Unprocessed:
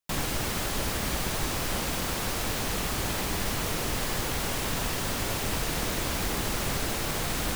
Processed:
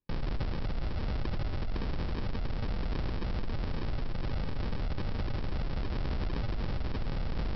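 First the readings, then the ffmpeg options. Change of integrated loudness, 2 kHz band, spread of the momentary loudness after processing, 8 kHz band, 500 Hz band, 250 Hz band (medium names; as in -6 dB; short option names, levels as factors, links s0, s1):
-7.5 dB, -13.0 dB, 1 LU, under -35 dB, -8.0 dB, -4.5 dB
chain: -af "aemphasis=mode=reproduction:type=riaa,alimiter=level_in=1.5:limit=0.0631:level=0:latency=1:release=25,volume=0.668,aresample=11025,acrusher=samples=16:mix=1:aa=0.000001,aresample=44100,volume=1.12"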